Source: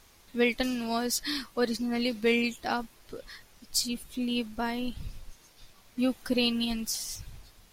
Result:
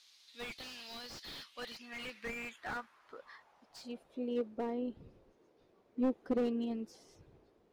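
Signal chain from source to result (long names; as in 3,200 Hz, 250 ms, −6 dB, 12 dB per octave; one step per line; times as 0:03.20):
band-pass filter sweep 4,100 Hz → 400 Hz, 0:01.19–0:04.66
slew-rate limiting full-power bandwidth 11 Hz
level +3.5 dB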